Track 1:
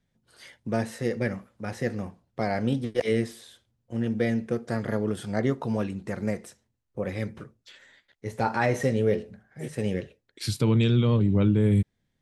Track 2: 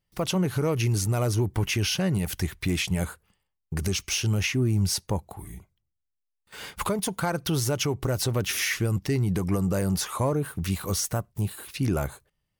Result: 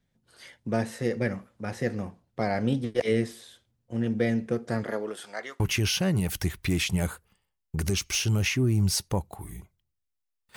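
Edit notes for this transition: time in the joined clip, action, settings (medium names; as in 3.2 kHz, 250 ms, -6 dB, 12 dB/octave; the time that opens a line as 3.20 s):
track 1
4.83–5.60 s: high-pass 260 Hz -> 1.5 kHz
5.60 s: go over to track 2 from 1.58 s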